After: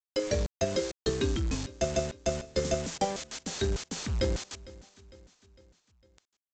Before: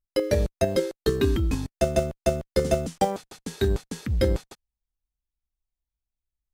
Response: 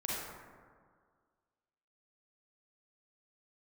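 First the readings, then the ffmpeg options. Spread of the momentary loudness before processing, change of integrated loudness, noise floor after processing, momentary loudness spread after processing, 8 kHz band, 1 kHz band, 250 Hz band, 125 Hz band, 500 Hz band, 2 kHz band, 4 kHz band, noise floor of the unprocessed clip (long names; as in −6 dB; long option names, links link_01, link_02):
6 LU, −5.5 dB, below −85 dBFS, 7 LU, +2.0 dB, −6.0 dB, −6.0 dB, −6.5 dB, −6.5 dB, −3.0 dB, +0.5 dB, below −85 dBFS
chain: -af "aeval=exprs='val(0)+0.5*0.0422*sgn(val(0))':channel_layout=same,aemphasis=mode=production:type=50fm,aresample=16000,aeval=exprs='val(0)*gte(abs(val(0)),0.0422)':channel_layout=same,aresample=44100,aecho=1:1:454|908|1362|1816:0.1|0.053|0.0281|0.0149,volume=-7.5dB"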